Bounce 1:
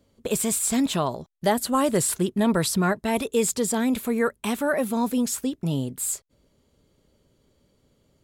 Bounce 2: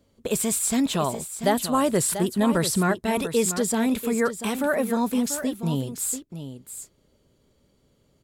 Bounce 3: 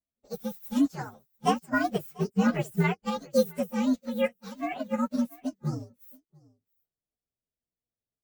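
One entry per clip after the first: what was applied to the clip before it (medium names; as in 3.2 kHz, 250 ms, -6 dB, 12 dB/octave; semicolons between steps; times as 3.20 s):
delay 689 ms -10.5 dB
frequency axis rescaled in octaves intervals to 122%; upward expansion 2.5:1, over -42 dBFS; trim +2.5 dB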